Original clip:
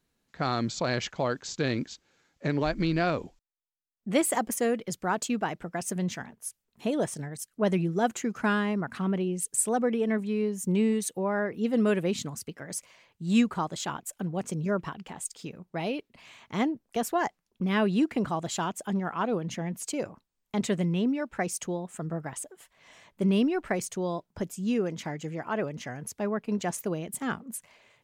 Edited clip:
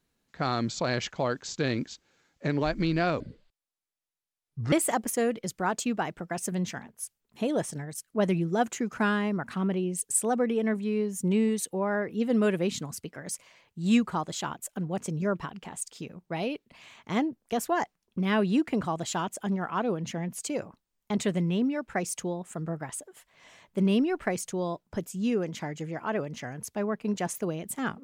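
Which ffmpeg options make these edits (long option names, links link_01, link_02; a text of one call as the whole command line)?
ffmpeg -i in.wav -filter_complex "[0:a]asplit=3[link_01][link_02][link_03];[link_01]atrim=end=3.204[link_04];[link_02]atrim=start=3.2:end=4.16,asetpts=PTS-STARTPTS,asetrate=27783,aresample=44100[link_05];[link_03]atrim=start=4.156[link_06];[link_04][link_05]acrossfade=duration=0.004:curve1=hsin:curve2=hsin[link_07];[link_07][link_06]acrossfade=duration=0.004:curve1=hsin:curve2=hsin" out.wav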